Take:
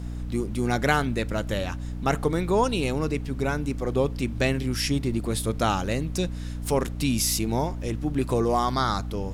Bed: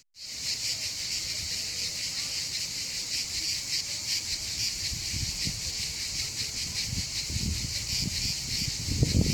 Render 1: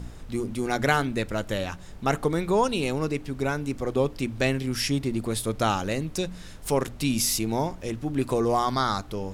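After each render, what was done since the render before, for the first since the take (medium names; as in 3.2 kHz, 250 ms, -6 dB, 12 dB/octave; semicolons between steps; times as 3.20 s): de-hum 60 Hz, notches 5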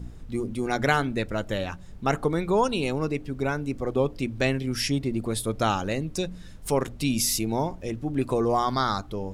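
noise reduction 8 dB, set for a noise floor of -43 dBFS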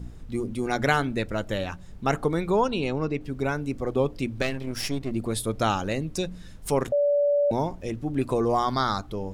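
2.56–3.21 s: distance through air 94 m; 4.42–5.11 s: partial rectifier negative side -12 dB; 6.92–7.51 s: bleep 577 Hz -18.5 dBFS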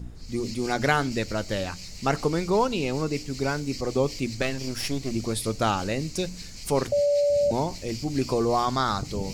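add bed -10.5 dB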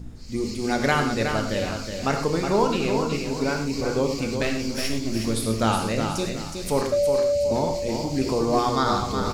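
on a send: feedback delay 368 ms, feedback 31%, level -6.5 dB; on the sum: gated-style reverb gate 140 ms flat, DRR 4 dB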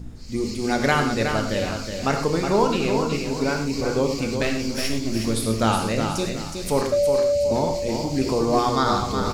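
trim +1.5 dB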